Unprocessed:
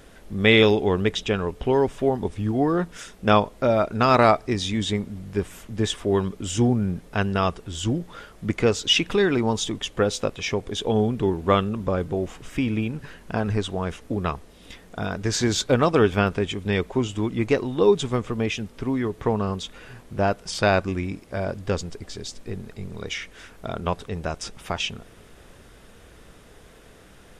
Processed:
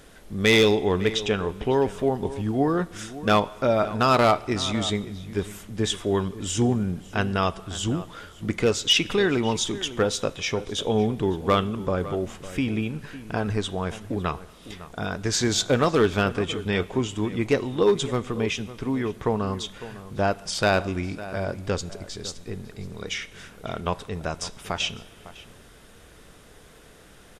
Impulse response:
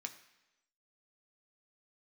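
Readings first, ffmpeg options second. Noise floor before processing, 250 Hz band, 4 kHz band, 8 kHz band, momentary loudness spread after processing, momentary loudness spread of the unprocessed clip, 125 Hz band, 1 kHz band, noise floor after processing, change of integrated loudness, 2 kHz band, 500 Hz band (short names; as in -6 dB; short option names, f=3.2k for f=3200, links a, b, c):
-50 dBFS, -1.5 dB, +0.5 dB, +2.0 dB, 14 LU, 14 LU, -2.0 dB, -1.5 dB, -50 dBFS, -1.5 dB, -1.0 dB, -1.5 dB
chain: -filter_complex "[0:a]asoftclip=type=hard:threshold=-10.5dB,asplit=2[a][b];[b]adelay=553.9,volume=-15dB,highshelf=f=4k:g=-12.5[c];[a][c]amix=inputs=2:normalize=0,asplit=2[d][e];[1:a]atrim=start_sample=2205,asetrate=25578,aresample=44100,highshelf=f=3.3k:g=11[f];[e][f]afir=irnorm=-1:irlink=0,volume=-11.5dB[g];[d][g]amix=inputs=2:normalize=0,volume=-2.5dB"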